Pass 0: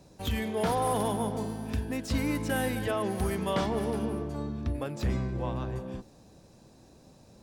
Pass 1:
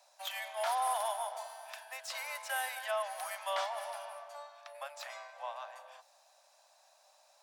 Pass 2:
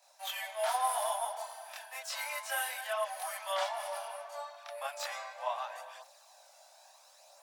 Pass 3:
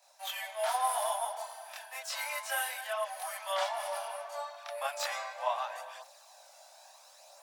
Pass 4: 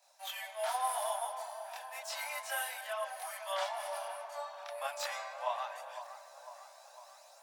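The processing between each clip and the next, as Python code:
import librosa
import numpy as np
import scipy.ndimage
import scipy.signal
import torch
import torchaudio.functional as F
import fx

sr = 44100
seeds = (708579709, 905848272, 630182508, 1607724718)

y1 = scipy.signal.sosfilt(scipy.signal.butter(16, 590.0, 'highpass', fs=sr, output='sos'), x)
y1 = y1 * 10.0 ** (-2.0 / 20.0)
y2 = fx.rider(y1, sr, range_db=5, speed_s=2.0)
y2 = fx.chorus_voices(y2, sr, voices=2, hz=0.33, base_ms=24, depth_ms=4.0, mix_pct=60)
y2 = fx.high_shelf(y2, sr, hz=9400.0, db=5.5)
y2 = y2 * 10.0 ** (3.5 / 20.0)
y3 = fx.rider(y2, sr, range_db=10, speed_s=2.0)
y4 = fx.echo_wet_lowpass(y3, sr, ms=503, feedback_pct=60, hz=1600.0, wet_db=-11)
y4 = y4 * 10.0 ** (-3.5 / 20.0)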